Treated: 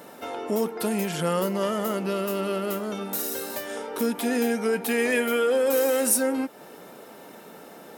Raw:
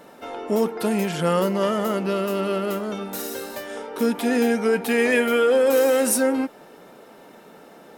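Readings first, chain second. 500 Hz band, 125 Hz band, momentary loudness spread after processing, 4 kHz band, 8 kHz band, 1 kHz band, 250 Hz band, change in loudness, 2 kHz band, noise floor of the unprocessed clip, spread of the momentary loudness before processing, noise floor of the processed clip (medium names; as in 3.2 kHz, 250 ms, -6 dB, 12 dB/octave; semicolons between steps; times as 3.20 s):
-4.0 dB, -4.0 dB, 23 LU, -2.5 dB, +0.5 dB, -3.5 dB, -4.0 dB, -3.5 dB, -4.0 dB, -47 dBFS, 13 LU, -46 dBFS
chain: high-pass 60 Hz; treble shelf 7.9 kHz +9 dB; in parallel at +3 dB: compression, threshold -32 dBFS, peak gain reduction 18.5 dB; on the sum: trim -6.5 dB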